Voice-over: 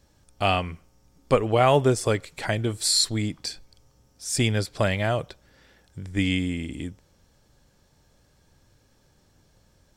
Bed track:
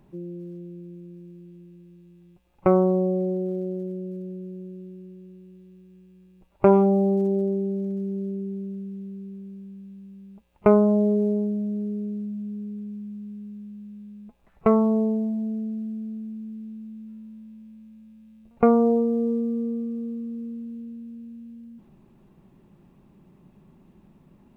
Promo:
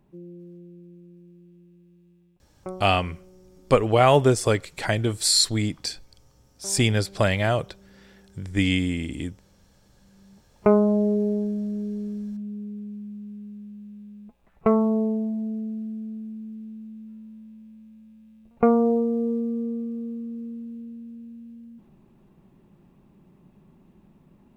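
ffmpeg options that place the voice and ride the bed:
-filter_complex "[0:a]adelay=2400,volume=1.26[s0];[1:a]volume=9.44,afade=t=out:st=2.11:d=0.74:silence=0.0944061,afade=t=in:st=9.97:d=0.73:silence=0.0530884[s1];[s0][s1]amix=inputs=2:normalize=0"

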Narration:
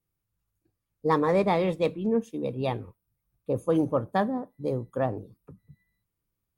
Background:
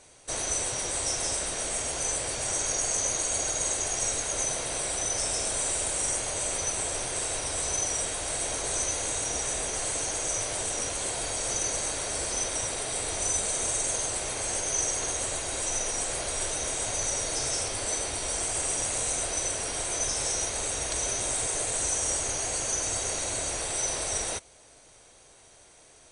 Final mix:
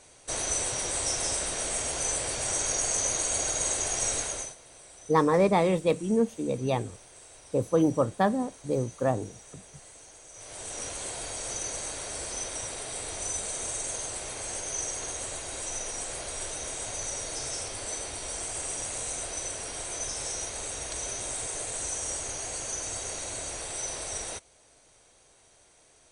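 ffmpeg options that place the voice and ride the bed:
-filter_complex "[0:a]adelay=4050,volume=1.12[s0];[1:a]volume=5.62,afade=t=out:st=4.2:d=0.35:silence=0.1,afade=t=in:st=10.33:d=0.52:silence=0.177828[s1];[s0][s1]amix=inputs=2:normalize=0"

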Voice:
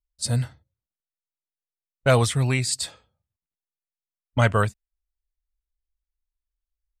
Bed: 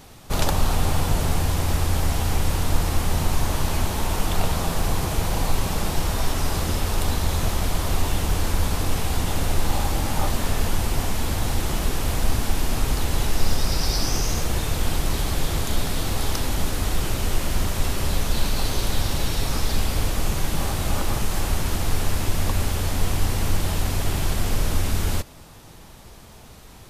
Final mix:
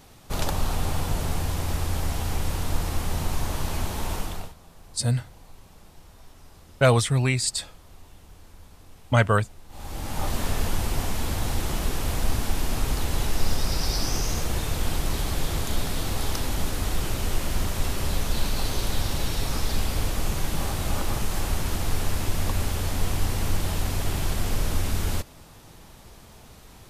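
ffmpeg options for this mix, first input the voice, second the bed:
-filter_complex "[0:a]adelay=4750,volume=1[s0];[1:a]volume=8.41,afade=t=out:st=4.13:d=0.41:silence=0.0841395,afade=t=in:st=9.69:d=0.7:silence=0.0668344[s1];[s0][s1]amix=inputs=2:normalize=0"

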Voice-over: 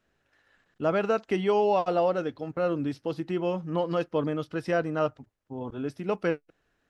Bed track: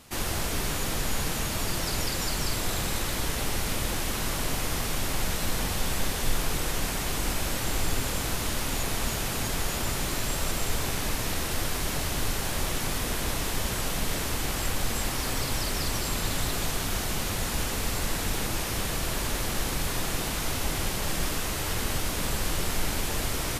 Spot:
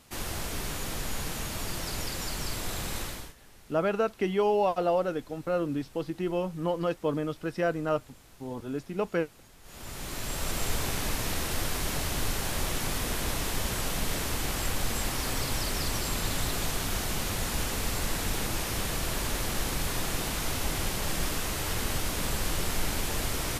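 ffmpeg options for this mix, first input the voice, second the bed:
-filter_complex "[0:a]adelay=2900,volume=0.841[s0];[1:a]volume=9.44,afade=t=out:st=3.01:d=0.33:silence=0.0891251,afade=t=in:st=9.62:d=1.02:silence=0.0595662[s1];[s0][s1]amix=inputs=2:normalize=0"

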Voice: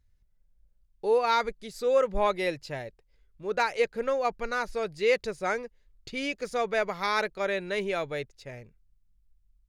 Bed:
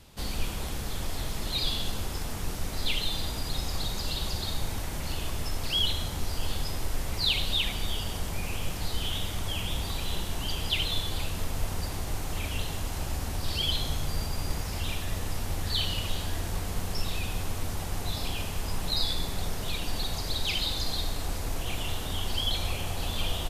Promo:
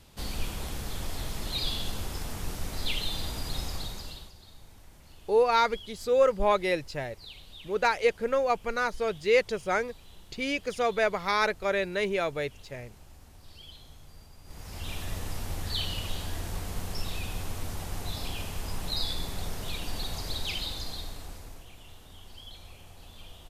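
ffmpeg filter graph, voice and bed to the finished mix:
-filter_complex "[0:a]adelay=4250,volume=1.19[s0];[1:a]volume=5.96,afade=t=out:st=3.61:d=0.71:silence=0.11885,afade=t=in:st=14.44:d=0.58:silence=0.133352,afade=t=out:st=20.33:d=1.37:silence=0.177828[s1];[s0][s1]amix=inputs=2:normalize=0"

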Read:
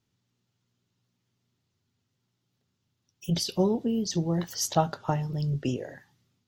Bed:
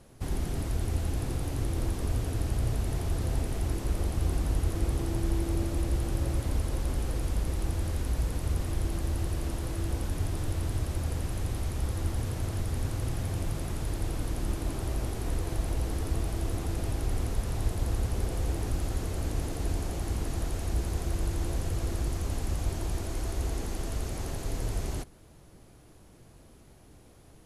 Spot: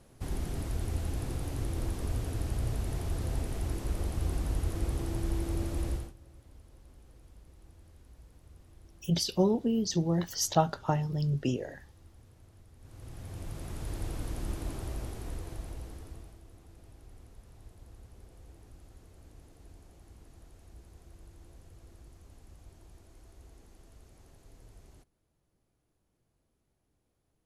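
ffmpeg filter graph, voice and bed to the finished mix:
-filter_complex "[0:a]adelay=5800,volume=0.891[s0];[1:a]volume=7.5,afade=t=out:st=5.89:d=0.24:silence=0.0794328,afade=t=in:st=12.79:d=1.19:silence=0.0891251,afade=t=out:st=14.63:d=1.78:silence=0.11885[s1];[s0][s1]amix=inputs=2:normalize=0"

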